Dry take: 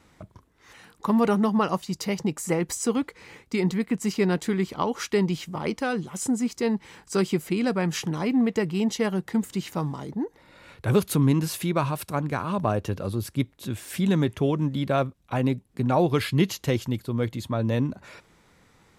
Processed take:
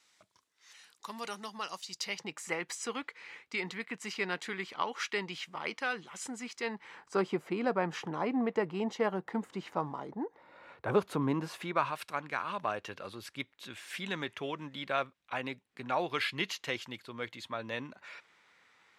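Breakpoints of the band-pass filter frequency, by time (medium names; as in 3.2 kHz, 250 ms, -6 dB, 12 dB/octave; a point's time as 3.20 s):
band-pass filter, Q 0.91
1.77 s 5.4 kHz
2.31 s 2.2 kHz
6.59 s 2.2 kHz
7.19 s 890 Hz
11.44 s 890 Hz
12.03 s 2.2 kHz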